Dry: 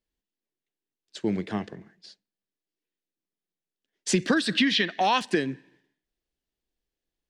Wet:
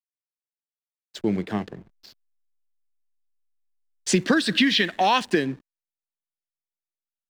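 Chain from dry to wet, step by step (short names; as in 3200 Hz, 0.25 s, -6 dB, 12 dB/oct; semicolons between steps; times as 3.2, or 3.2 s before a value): backlash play -44 dBFS; gain +3 dB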